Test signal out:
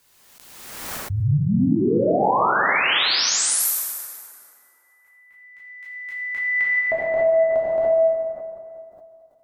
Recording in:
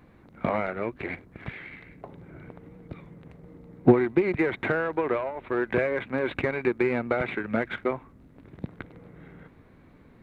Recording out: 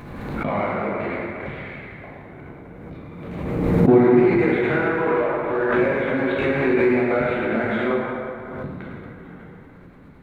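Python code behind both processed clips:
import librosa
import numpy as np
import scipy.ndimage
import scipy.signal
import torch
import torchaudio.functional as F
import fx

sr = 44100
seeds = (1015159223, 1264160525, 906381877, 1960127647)

y = fx.rev_plate(x, sr, seeds[0], rt60_s=2.7, hf_ratio=0.6, predelay_ms=0, drr_db=-7.5)
y = fx.pre_swell(y, sr, db_per_s=34.0)
y = y * librosa.db_to_amplitude(-3.0)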